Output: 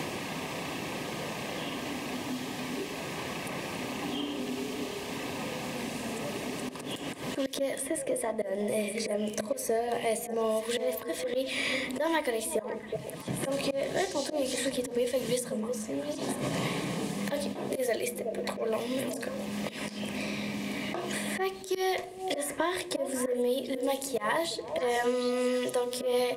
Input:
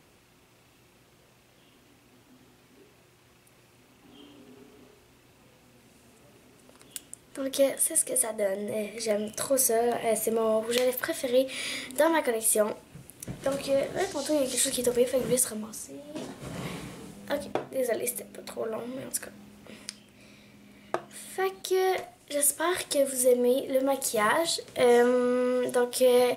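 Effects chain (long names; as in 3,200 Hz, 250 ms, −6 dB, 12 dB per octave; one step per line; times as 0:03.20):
high-shelf EQ 8,600 Hz −8.5 dB
mains-hum notches 60/120/180/240/300/360/420/480 Hz
volume swells 183 ms
in parallel at −11.5 dB: dead-zone distortion −44.5 dBFS
on the sum: Butterworth band-reject 1,400 Hz, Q 4.8
on a send: echo through a band-pass that steps 184 ms, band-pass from 210 Hz, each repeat 1.4 octaves, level −8.5 dB
on the sum: multiband upward and downward compressor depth 100%
level −1 dB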